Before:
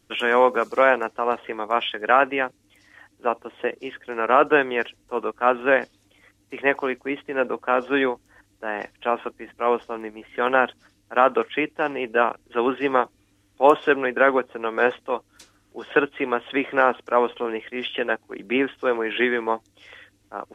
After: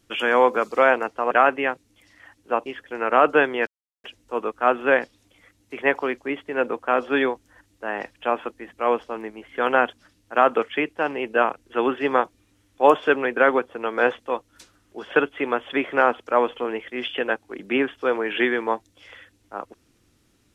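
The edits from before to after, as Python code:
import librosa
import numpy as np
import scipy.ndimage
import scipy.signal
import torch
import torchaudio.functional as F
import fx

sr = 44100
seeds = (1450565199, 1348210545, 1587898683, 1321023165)

y = fx.edit(x, sr, fx.cut(start_s=1.31, length_s=0.74),
    fx.cut(start_s=3.4, length_s=0.43),
    fx.insert_silence(at_s=4.84, length_s=0.37), tone=tone)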